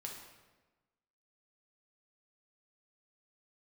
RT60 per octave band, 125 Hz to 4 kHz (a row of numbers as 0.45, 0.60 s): 1.4, 1.4, 1.3, 1.2, 1.1, 0.90 s